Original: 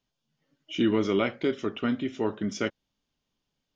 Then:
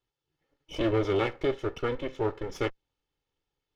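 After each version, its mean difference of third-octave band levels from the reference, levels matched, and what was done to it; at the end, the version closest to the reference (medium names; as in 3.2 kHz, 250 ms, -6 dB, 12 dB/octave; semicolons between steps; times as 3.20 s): 5.0 dB: comb filter that takes the minimum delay 2.3 ms; treble shelf 4.9 kHz -11.5 dB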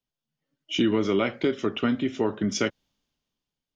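1.5 dB: compression 3:1, threshold -29 dBFS, peak gain reduction 7.5 dB; three bands expanded up and down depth 40%; trim +7.5 dB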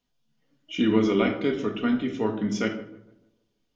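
3.0 dB: on a send: tape echo 151 ms, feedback 46%, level -16.5 dB, low-pass 1.5 kHz; on the sum: simulated room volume 970 m³, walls furnished, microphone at 1.8 m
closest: second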